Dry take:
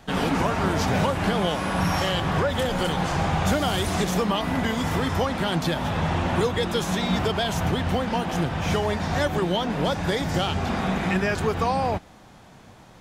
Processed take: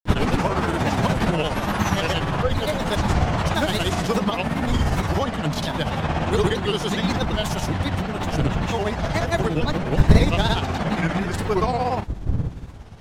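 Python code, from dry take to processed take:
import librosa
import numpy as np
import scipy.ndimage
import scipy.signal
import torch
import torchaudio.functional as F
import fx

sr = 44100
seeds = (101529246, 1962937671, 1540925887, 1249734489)

y = fx.dmg_wind(x, sr, seeds[0], corner_hz=120.0, level_db=-28.0)
y = fx.granulator(y, sr, seeds[1], grain_ms=100.0, per_s=17.0, spray_ms=100.0, spread_st=3)
y = y * librosa.db_to_amplitude(3.0)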